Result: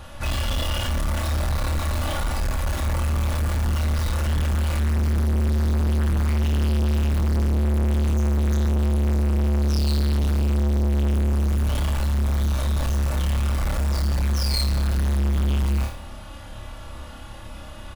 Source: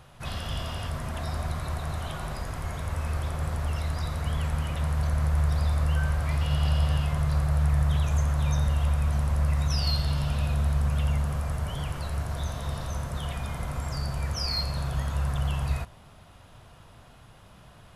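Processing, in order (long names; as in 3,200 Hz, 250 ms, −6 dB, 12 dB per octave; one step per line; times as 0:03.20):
in parallel at −7 dB: wrap-around overflow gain 30 dB
on the sum: low-shelf EQ 100 Hz +6 dB
comb filter 3.5 ms, depth 72%
on a send: flutter between parallel walls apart 4.8 metres, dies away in 0.39 s
on the sum: soft clipping −24 dBFS, distortion −5 dB
level +5 dB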